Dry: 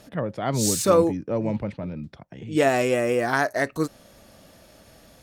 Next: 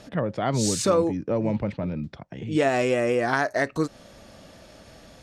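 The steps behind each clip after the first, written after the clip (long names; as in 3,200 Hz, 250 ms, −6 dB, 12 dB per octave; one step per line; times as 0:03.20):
low-pass filter 7,300 Hz 12 dB per octave
downward compressor 2 to 1, threshold −26 dBFS, peak gain reduction 7.5 dB
level +3.5 dB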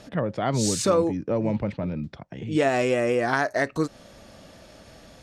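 no processing that can be heard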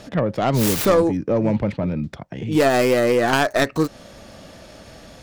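stylus tracing distortion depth 0.34 ms
soft clipping −13 dBFS, distortion −21 dB
level +6 dB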